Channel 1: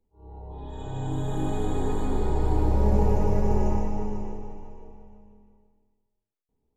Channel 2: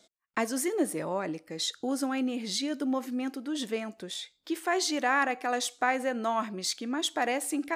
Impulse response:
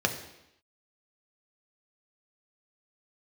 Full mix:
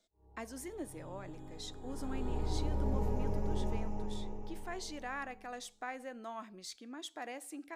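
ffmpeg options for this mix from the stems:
-filter_complex "[0:a]acompressor=threshold=-35dB:ratio=1.5,volume=-5.5dB,afade=type=in:start_time=1.81:duration=0.55:silence=0.237137[link_01];[1:a]volume=-15dB[link_02];[link_01][link_02]amix=inputs=2:normalize=0"

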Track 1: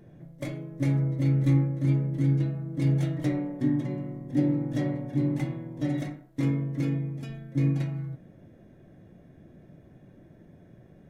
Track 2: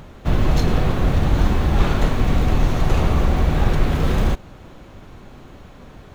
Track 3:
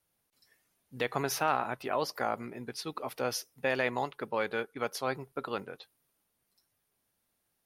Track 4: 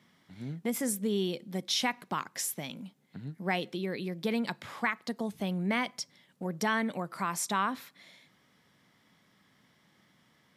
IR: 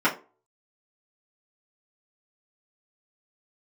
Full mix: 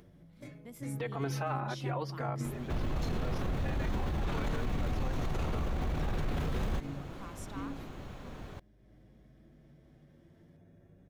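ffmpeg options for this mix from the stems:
-filter_complex "[0:a]aeval=exprs='val(0)+0.002*(sin(2*PI*50*n/s)+sin(2*PI*2*50*n/s)/2+sin(2*PI*3*50*n/s)/3+sin(2*PI*4*50*n/s)/4+sin(2*PI*5*50*n/s)/5)':channel_layout=same,asplit=2[link_01][link_02];[link_02]adelay=8.3,afreqshift=0.27[link_03];[link_01][link_03]amix=inputs=2:normalize=1,volume=-11dB[link_04];[1:a]adelay=2450,volume=-3.5dB[link_05];[2:a]lowpass=frequency=2000:poles=1,asplit=2[link_06][link_07];[link_07]adelay=3.9,afreqshift=-0.94[link_08];[link_06][link_08]amix=inputs=2:normalize=1,volume=2dB[link_09];[3:a]volume=-18dB[link_10];[link_04][link_05][link_09][link_10]amix=inputs=4:normalize=0,acompressor=mode=upward:threshold=-51dB:ratio=2.5,alimiter=level_in=1.5dB:limit=-24dB:level=0:latency=1:release=66,volume=-1.5dB"

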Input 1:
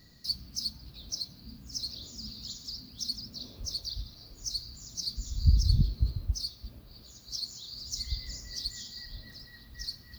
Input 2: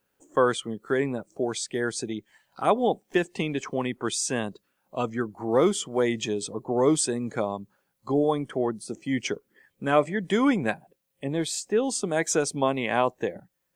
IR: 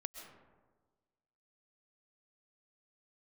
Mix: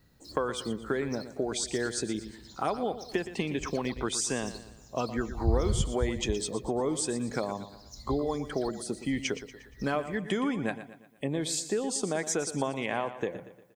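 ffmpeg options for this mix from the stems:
-filter_complex "[0:a]highshelf=frequency=2300:gain=-8.5,bandreject=frequency=4600:width=7.9,volume=-4.5dB[link_01];[1:a]acompressor=threshold=-29dB:ratio=6,volume=2dB,asplit=2[link_02][link_03];[link_03]volume=-12.5dB,aecho=0:1:118|236|354|472|590|708:1|0.45|0.202|0.0911|0.041|0.0185[link_04];[link_01][link_02][link_04]amix=inputs=3:normalize=0"

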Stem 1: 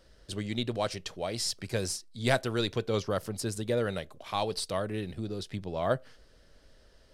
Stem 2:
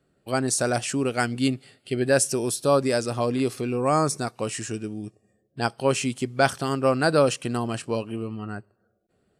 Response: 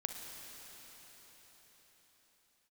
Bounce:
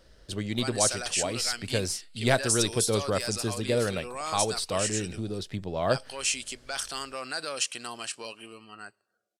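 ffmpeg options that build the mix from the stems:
-filter_complex "[0:a]volume=2.5dB[link_01];[1:a]acontrast=73,alimiter=limit=-11.5dB:level=0:latency=1:release=44,bandpass=frequency=5600:width_type=q:width=0.62:csg=0,adelay=300,volume=-2dB[link_02];[link_01][link_02]amix=inputs=2:normalize=0"

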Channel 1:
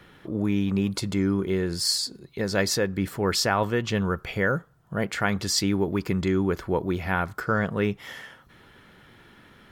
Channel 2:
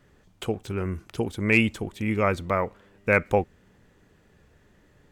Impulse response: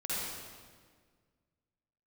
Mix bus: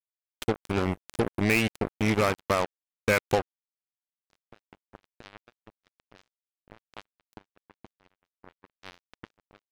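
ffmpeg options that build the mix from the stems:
-filter_complex "[0:a]lowpass=frequency=1100:poles=1,acompressor=threshold=-31dB:ratio=16,adelay=1750,volume=-1dB,asplit=2[link_01][link_02];[link_02]volume=-13.5dB[link_03];[1:a]acompressor=threshold=-23dB:ratio=4,volume=2.5dB,asplit=2[link_04][link_05];[link_05]apad=whole_len=505399[link_06];[link_01][link_06]sidechaincompress=threshold=-44dB:ratio=16:attack=16:release=602[link_07];[link_03]aecho=0:1:629:1[link_08];[link_07][link_04][link_08]amix=inputs=3:normalize=0,acrusher=bits=3:mix=0:aa=0.5"

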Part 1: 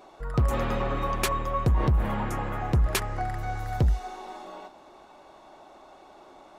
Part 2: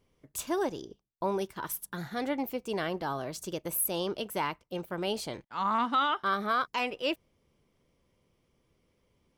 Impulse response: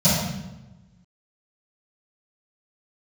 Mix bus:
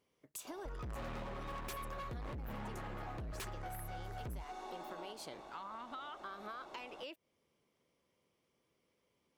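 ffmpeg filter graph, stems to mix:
-filter_complex "[0:a]asoftclip=type=hard:threshold=-29dB,adelay=450,volume=-2dB[link_01];[1:a]highpass=frequency=330:poles=1,acompressor=threshold=-37dB:ratio=6,volume=-4dB[link_02];[link_01][link_02]amix=inputs=2:normalize=0,acompressor=threshold=-43dB:ratio=6"

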